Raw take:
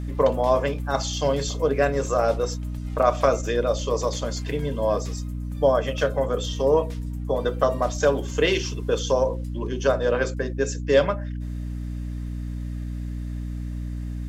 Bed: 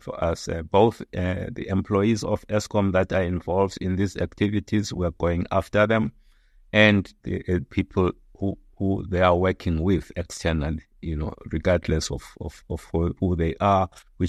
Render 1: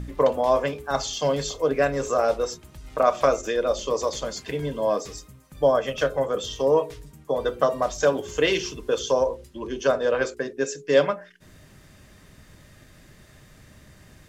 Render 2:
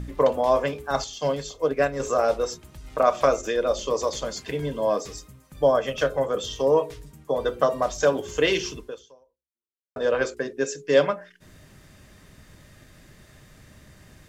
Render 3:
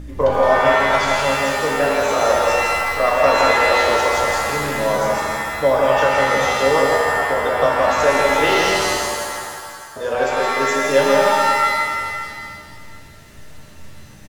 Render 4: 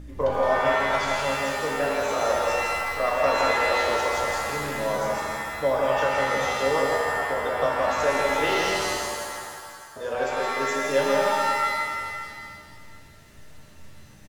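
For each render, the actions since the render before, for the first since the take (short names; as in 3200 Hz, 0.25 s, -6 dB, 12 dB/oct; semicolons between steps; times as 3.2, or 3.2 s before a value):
de-hum 60 Hz, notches 7
1.04–2 upward expander, over -35 dBFS; 8.77–9.96 fade out exponential
on a send: echo 0.166 s -4 dB; on the sum: shimmer reverb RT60 2 s, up +7 st, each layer -2 dB, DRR -1 dB
gain -7.5 dB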